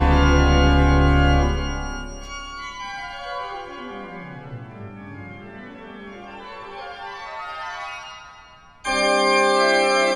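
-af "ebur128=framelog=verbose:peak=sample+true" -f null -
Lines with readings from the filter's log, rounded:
Integrated loudness:
  I:         -20.1 LUFS
  Threshold: -32.8 LUFS
Loudness range:
  LRA:        15.5 LU
  Threshold: -46.6 LUFS
  LRA low:   -36.5 LUFS
  LRA high:  -21.0 LUFS
Sample peak:
  Peak:       -4.3 dBFS
True peak:
  Peak:       -4.3 dBFS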